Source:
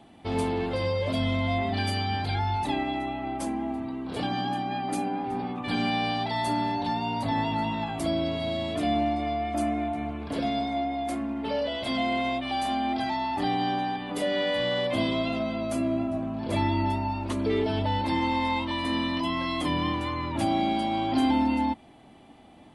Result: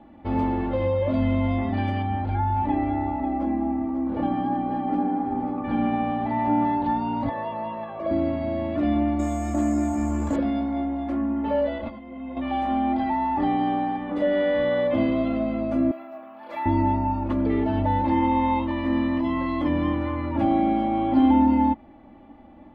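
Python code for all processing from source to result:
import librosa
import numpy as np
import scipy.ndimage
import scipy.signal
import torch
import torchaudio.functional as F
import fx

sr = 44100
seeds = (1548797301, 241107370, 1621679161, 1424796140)

y = fx.chain(x, sr, fx.lowpass(hz=1600.0, slope=6),
    fx.echo_single(ms=542, db=-9.0), at=(2.02, 6.65))
y = fx.chain(y, sr, fx.highpass(hz=270.0, slope=12),
    fx.spacing_loss(db_at_10k=23),
    fx.comb(ms=1.8, depth=0.9), at=(7.29, 8.11))
y = fx.chain(y, sr, fx.high_shelf(hz=4500.0, db=-6.5),
    fx.resample_bad(factor=6, down='none', up='zero_stuff'),
    fx.env_flatten(amount_pct=50), at=(9.19, 10.36))
y = fx.chain(y, sr, fx.spacing_loss(db_at_10k=21),
    fx.over_compress(threshold_db=-33.0, ratio=-0.5),
    fx.ensemble(), at=(11.78, 12.37))
y = fx.chain(y, sr, fx.highpass(hz=960.0, slope=12),
    fx.resample_bad(factor=3, down='none', up='zero_stuff'), at=(15.91, 16.66))
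y = scipy.signal.sosfilt(scipy.signal.butter(2, 1600.0, 'lowpass', fs=sr, output='sos'), y)
y = fx.low_shelf(y, sr, hz=130.0, db=5.0)
y = y + 0.63 * np.pad(y, (int(3.5 * sr / 1000.0), 0))[:len(y)]
y = F.gain(torch.from_numpy(y), 1.5).numpy()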